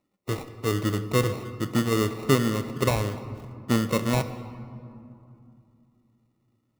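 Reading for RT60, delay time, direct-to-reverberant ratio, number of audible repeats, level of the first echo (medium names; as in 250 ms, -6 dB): 2.7 s, no echo, 10.0 dB, no echo, no echo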